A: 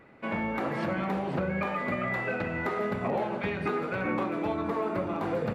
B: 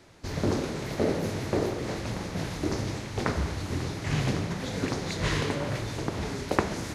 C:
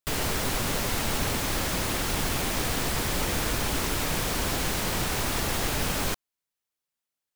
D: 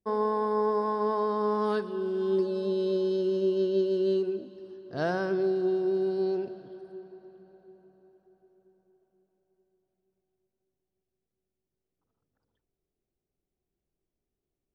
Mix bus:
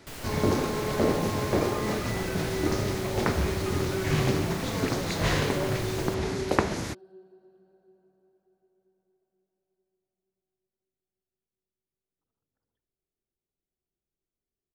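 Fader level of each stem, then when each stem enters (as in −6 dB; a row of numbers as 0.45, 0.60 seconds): −8.0, +1.5, −12.5, −7.5 decibels; 0.00, 0.00, 0.00, 0.20 seconds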